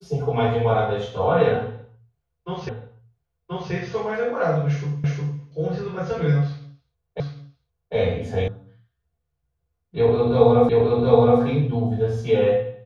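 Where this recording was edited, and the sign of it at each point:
2.69 s: repeat of the last 1.03 s
5.04 s: repeat of the last 0.36 s
7.20 s: repeat of the last 0.75 s
8.48 s: sound stops dead
10.69 s: repeat of the last 0.72 s

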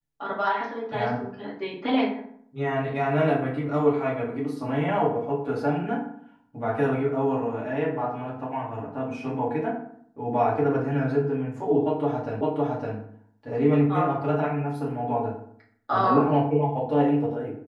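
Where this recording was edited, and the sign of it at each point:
12.41 s: repeat of the last 0.56 s

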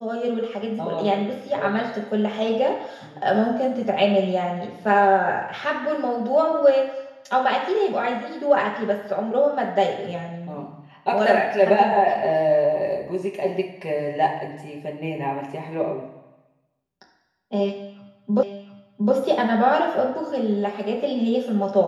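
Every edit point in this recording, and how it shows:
18.43 s: repeat of the last 0.71 s

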